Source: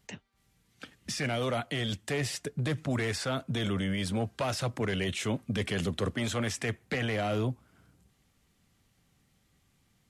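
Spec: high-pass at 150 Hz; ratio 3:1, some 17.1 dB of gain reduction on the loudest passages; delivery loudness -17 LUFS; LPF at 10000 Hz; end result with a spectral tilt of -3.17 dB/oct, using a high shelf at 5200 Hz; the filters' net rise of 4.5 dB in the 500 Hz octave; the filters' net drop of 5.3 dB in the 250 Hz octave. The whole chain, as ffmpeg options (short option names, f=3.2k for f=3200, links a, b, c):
-af "highpass=150,lowpass=10k,equalizer=f=250:t=o:g=-8,equalizer=f=500:t=o:g=7.5,highshelf=f=5.2k:g=8,acompressor=threshold=-48dB:ratio=3,volume=28.5dB"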